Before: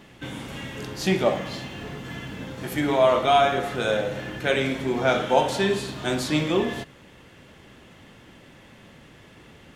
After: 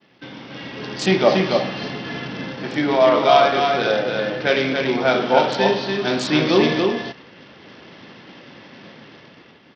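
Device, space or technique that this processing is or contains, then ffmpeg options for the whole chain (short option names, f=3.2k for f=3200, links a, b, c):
Bluetooth headset: -af "agate=range=-33dB:threshold=-45dB:ratio=3:detection=peak,highpass=170,highshelf=f=9.8k:g=-5,aecho=1:1:284:0.596,dynaudnorm=f=150:g=11:m=11dB,aresample=16000,aresample=44100,volume=-1dB" -ar 44100 -c:a sbc -b:a 64k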